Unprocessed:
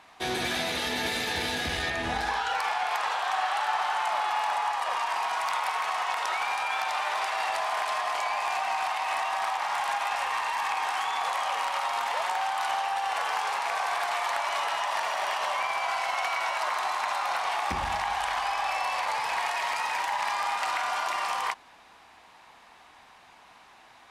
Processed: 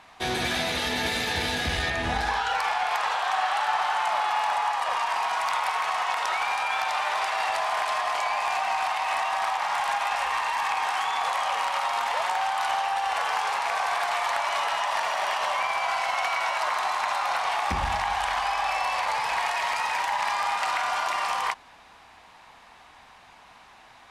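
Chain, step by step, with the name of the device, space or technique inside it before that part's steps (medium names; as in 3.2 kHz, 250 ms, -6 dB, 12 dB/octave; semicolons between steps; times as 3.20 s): low shelf boost with a cut just above (bass shelf 110 Hz +6.5 dB; peaking EQ 340 Hz -2.5 dB 0.67 oct); treble shelf 12 kHz -4.5 dB; trim +2.5 dB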